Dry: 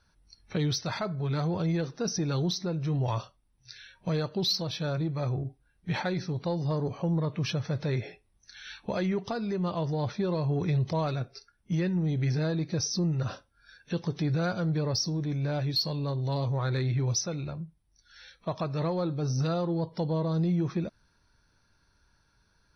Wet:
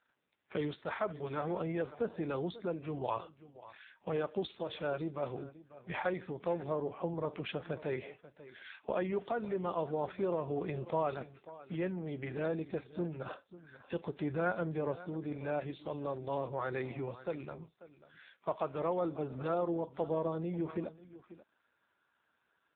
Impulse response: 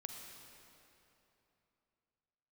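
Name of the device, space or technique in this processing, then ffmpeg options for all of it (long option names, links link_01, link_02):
satellite phone: -filter_complex "[0:a]asplit=3[link_01][link_02][link_03];[link_01]afade=type=out:start_time=14.19:duration=0.02[link_04];[link_02]lowshelf=frequency=160:gain=3.5,afade=type=in:start_time=14.19:duration=0.02,afade=type=out:start_time=14.92:duration=0.02[link_05];[link_03]afade=type=in:start_time=14.92:duration=0.02[link_06];[link_04][link_05][link_06]amix=inputs=3:normalize=0,highpass=330,lowpass=3300,aecho=1:1:541:0.15" -ar 8000 -c:a libopencore_amrnb -b:a 5900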